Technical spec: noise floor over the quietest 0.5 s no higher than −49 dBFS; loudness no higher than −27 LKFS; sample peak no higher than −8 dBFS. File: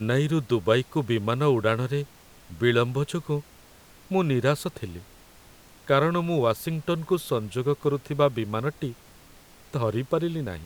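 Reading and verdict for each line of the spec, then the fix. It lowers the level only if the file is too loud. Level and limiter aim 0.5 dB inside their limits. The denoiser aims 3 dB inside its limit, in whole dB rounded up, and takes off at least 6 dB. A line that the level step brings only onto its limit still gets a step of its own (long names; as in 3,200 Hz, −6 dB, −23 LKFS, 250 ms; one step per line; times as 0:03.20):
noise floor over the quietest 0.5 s −52 dBFS: in spec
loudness −26.0 LKFS: out of spec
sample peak −7.5 dBFS: out of spec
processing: level −1.5 dB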